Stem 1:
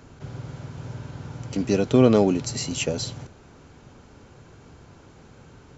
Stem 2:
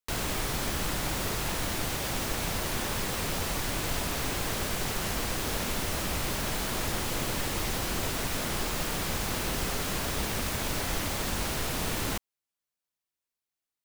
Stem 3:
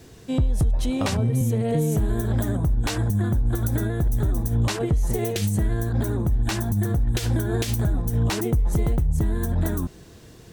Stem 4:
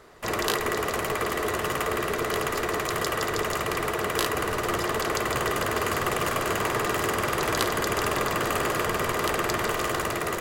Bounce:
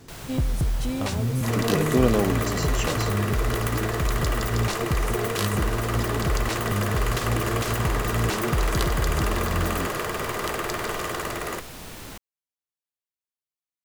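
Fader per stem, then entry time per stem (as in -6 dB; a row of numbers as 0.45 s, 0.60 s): -4.5 dB, -8.5 dB, -3.5 dB, -2.5 dB; 0.00 s, 0.00 s, 0.00 s, 1.20 s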